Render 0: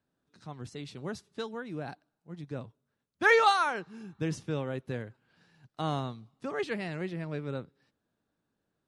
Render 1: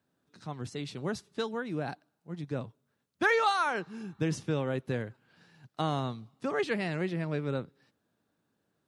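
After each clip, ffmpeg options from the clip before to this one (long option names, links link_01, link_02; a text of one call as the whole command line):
ffmpeg -i in.wav -af "highpass=80,acompressor=threshold=-29dB:ratio=3,volume=4dB" out.wav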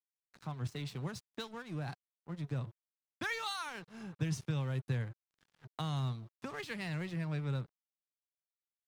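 ffmpeg -i in.wav -filter_complex "[0:a]equalizer=frequency=125:width_type=o:width=1:gain=8,equalizer=frequency=1000:width_type=o:width=1:gain=7,equalizer=frequency=2000:width_type=o:width=1:gain=5,acrossover=split=150|3000[link_01][link_02][link_03];[link_02]acompressor=threshold=-41dB:ratio=4[link_04];[link_01][link_04][link_03]amix=inputs=3:normalize=0,aeval=exprs='sgn(val(0))*max(abs(val(0))-0.00316,0)':channel_layout=same,volume=-2dB" out.wav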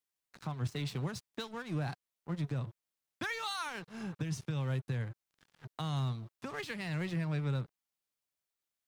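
ffmpeg -i in.wav -af "alimiter=level_in=8dB:limit=-24dB:level=0:latency=1:release=377,volume=-8dB,volume=5.5dB" out.wav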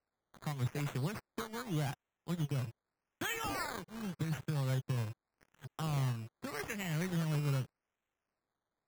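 ffmpeg -i in.wav -af "acrusher=samples=13:mix=1:aa=0.000001:lfo=1:lforange=7.8:lforate=0.84" out.wav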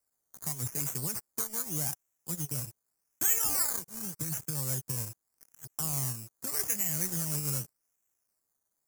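ffmpeg -i in.wav -af "aexciter=amount=7.5:drive=8.8:freq=5400,volume=-3dB" out.wav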